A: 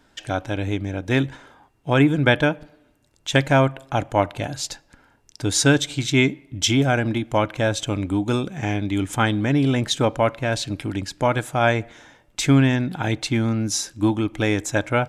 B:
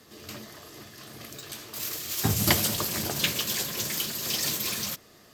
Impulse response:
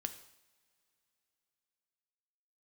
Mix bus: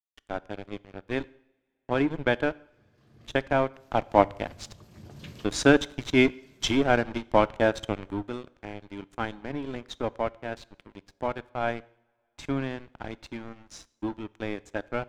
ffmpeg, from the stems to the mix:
-filter_complex "[0:a]highpass=380,aeval=exprs='sgn(val(0))*max(abs(val(0))-0.0335,0)':c=same,volume=0.841,afade=t=in:st=3.82:d=0.21:silence=0.473151,afade=t=out:st=7.92:d=0.39:silence=0.334965,asplit=3[s0][s1][s2];[s1]volume=0.422[s3];[1:a]adelay=2000,volume=0.168[s4];[s2]apad=whole_len=323508[s5];[s4][s5]sidechaincompress=threshold=0.00891:ratio=4:attack=16:release=655[s6];[2:a]atrim=start_sample=2205[s7];[s3][s7]afir=irnorm=-1:irlink=0[s8];[s0][s6][s8]amix=inputs=3:normalize=0,aemphasis=mode=reproduction:type=riaa"

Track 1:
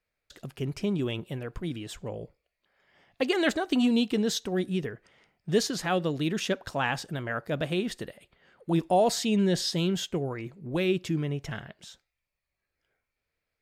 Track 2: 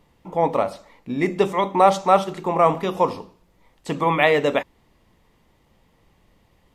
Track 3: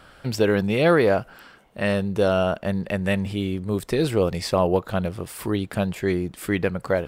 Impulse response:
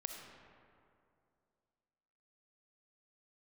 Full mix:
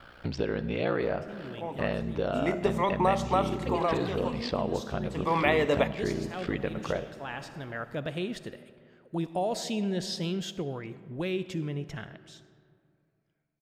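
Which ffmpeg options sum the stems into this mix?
-filter_complex "[0:a]dynaudnorm=f=110:g=17:m=2.37,adelay=450,volume=0.211,asplit=2[s0][s1];[s1]volume=0.501[s2];[1:a]acompressor=threshold=0.126:ratio=6,adelay=1250,volume=1.78,afade=t=in:st=2:d=0.74:silence=0.298538,afade=t=out:st=3.56:d=0.7:silence=0.316228,afade=t=in:st=5.13:d=0.25:silence=0.281838,asplit=2[s3][s4];[s4]volume=0.447[s5];[2:a]lowpass=f=5000:w=0.5412,lowpass=f=5000:w=1.3066,acrusher=bits=10:mix=0:aa=0.000001,aeval=exprs='val(0)*sin(2*PI*30*n/s)':c=same,volume=1,asplit=3[s6][s7][s8];[s7]volume=0.188[s9];[s8]apad=whole_len=620166[s10];[s0][s10]sidechaincompress=threshold=0.0141:ratio=8:attack=16:release=666[s11];[s11][s6]amix=inputs=2:normalize=0,highshelf=f=10000:g=-10.5,acompressor=threshold=0.0316:ratio=6,volume=1[s12];[3:a]atrim=start_sample=2205[s13];[s2][s5][s9]amix=inputs=3:normalize=0[s14];[s14][s13]afir=irnorm=-1:irlink=0[s15];[s3][s12][s15]amix=inputs=3:normalize=0"

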